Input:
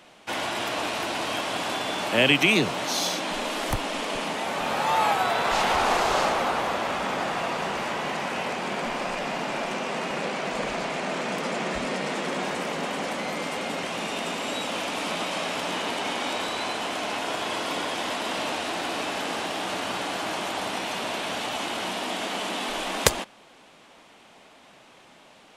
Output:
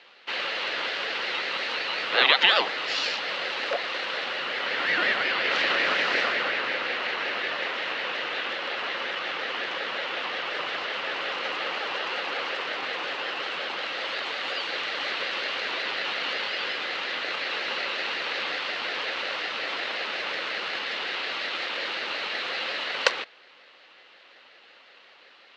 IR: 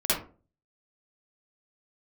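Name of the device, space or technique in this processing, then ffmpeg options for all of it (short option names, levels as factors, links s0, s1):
voice changer toy: -af "aeval=exprs='val(0)*sin(2*PI*800*n/s+800*0.35/5.5*sin(2*PI*5.5*n/s))':c=same,highpass=460,equalizer=f=530:t=q:w=4:g=7,equalizer=f=2000:t=q:w=4:g=4,equalizer=f=2800:t=q:w=4:g=8,equalizer=f=4200:t=q:w=4:g=5,lowpass=f=4900:w=0.5412,lowpass=f=4900:w=1.3066"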